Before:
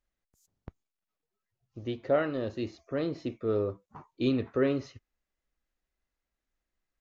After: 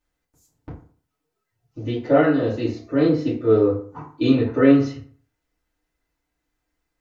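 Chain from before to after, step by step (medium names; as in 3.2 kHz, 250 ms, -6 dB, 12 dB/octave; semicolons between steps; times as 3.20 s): FDN reverb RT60 0.47 s, low-frequency decay 1×, high-frequency decay 0.6×, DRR -8.5 dB; trim +1 dB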